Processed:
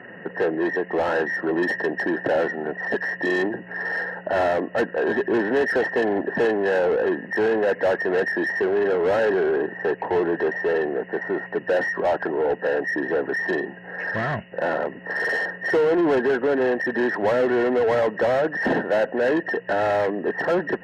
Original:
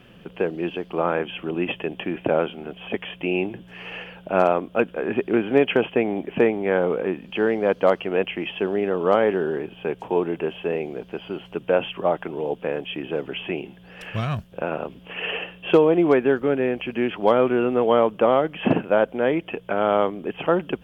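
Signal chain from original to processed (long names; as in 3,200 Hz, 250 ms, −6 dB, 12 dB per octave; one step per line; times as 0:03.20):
hearing-aid frequency compression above 1,600 Hz 4 to 1
mid-hump overdrive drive 29 dB, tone 1,200 Hz, clips at −4.5 dBFS
notch comb filter 1,200 Hz
level −7 dB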